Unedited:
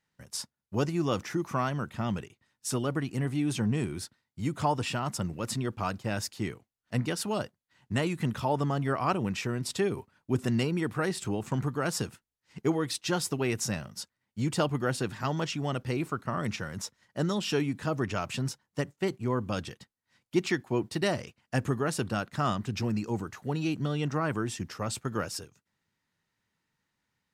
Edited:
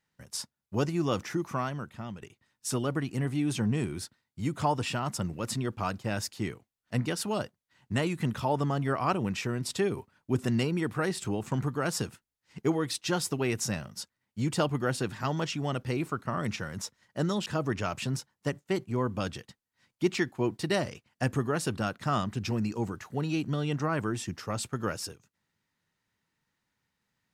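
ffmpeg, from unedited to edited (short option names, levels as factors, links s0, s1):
-filter_complex "[0:a]asplit=3[s0][s1][s2];[s0]atrim=end=2.22,asetpts=PTS-STARTPTS,afade=t=out:st=1.33:d=0.89:silence=0.251189[s3];[s1]atrim=start=2.22:end=17.462,asetpts=PTS-STARTPTS,afade=t=in:d=0.004:c=hsin:silence=0.251189[s4];[s2]atrim=start=17.778[s5];[s3][s4]concat=n=2:v=0:a=1[s6];[s6][s5]acrossfade=d=0.004:c1=hsin:c2=hsin"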